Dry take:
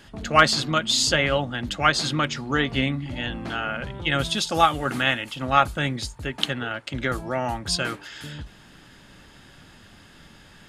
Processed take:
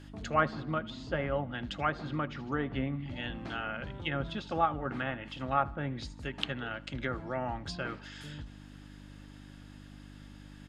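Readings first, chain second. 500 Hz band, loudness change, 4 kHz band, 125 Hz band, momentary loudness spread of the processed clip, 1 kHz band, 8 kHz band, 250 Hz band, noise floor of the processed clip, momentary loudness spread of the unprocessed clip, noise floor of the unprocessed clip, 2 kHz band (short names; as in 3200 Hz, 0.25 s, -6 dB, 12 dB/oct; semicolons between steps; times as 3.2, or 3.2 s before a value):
-8.5 dB, -11.5 dB, -17.5 dB, -8.0 dB, 20 LU, -10.0 dB, under -25 dB, -8.0 dB, -50 dBFS, 11 LU, -50 dBFS, -13.0 dB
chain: feedback echo 78 ms, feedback 50%, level -22 dB; treble ducked by the level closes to 1300 Hz, closed at -19.5 dBFS; buzz 50 Hz, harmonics 6, -42 dBFS -2 dB/oct; gain -8.5 dB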